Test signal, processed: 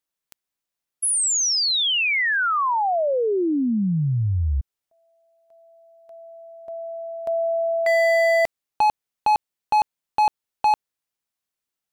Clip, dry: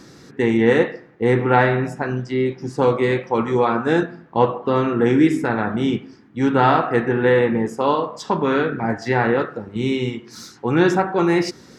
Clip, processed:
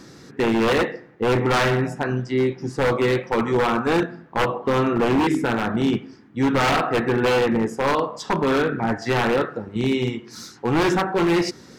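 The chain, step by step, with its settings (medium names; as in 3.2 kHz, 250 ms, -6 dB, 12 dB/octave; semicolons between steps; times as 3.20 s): wavefolder -13.5 dBFS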